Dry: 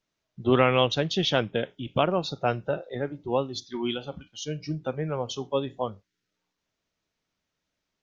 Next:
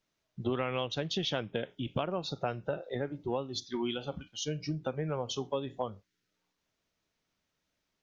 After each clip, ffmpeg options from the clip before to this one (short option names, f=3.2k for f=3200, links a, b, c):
-af "acompressor=threshold=-30dB:ratio=5"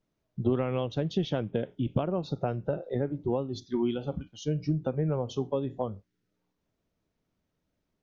-af "tiltshelf=f=870:g=8"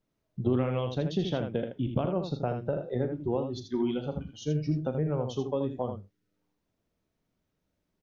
-af "aecho=1:1:40|80:0.224|0.447,volume=-1dB"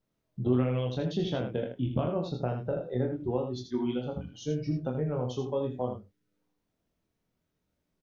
-filter_complex "[0:a]asplit=2[a][b];[b]adelay=24,volume=-4.5dB[c];[a][c]amix=inputs=2:normalize=0,volume=-2dB"